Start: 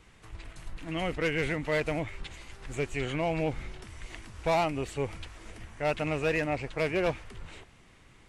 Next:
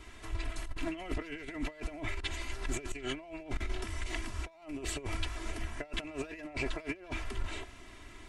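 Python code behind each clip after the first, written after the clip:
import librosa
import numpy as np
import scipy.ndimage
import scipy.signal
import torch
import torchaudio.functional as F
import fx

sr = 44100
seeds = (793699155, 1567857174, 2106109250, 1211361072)

y = fx.peak_eq(x, sr, hz=120.0, db=-6.0, octaves=0.31)
y = y + 0.76 * np.pad(y, (int(3.0 * sr / 1000.0), 0))[:len(y)]
y = fx.over_compress(y, sr, threshold_db=-35.0, ratio=-0.5)
y = y * 10.0 ** (-1.0 / 20.0)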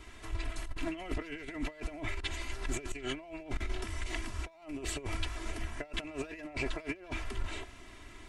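y = fx.attack_slew(x, sr, db_per_s=520.0)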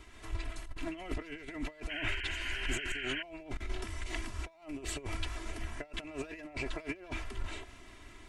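y = fx.spec_paint(x, sr, seeds[0], shape='noise', start_s=1.89, length_s=1.34, low_hz=1400.0, high_hz=3200.0, level_db=-38.0)
y = fx.am_noise(y, sr, seeds[1], hz=5.7, depth_pct=55)
y = y * 10.0 ** (1.0 / 20.0)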